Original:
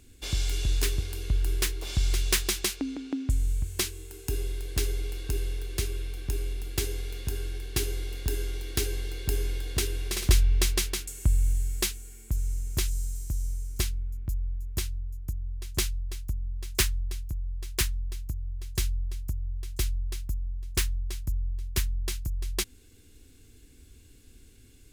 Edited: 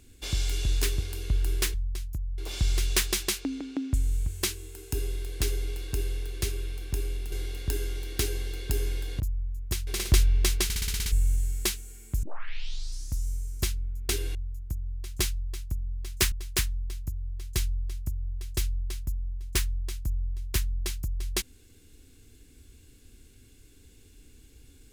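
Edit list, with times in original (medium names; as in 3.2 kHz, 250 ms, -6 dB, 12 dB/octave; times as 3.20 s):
6.68–7.90 s: delete
9.78–10.04 s: swap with 14.26–14.93 s
10.81 s: stutter in place 0.06 s, 8 plays
12.40 s: tape start 1.04 s
16.90–17.54 s: move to 1.74 s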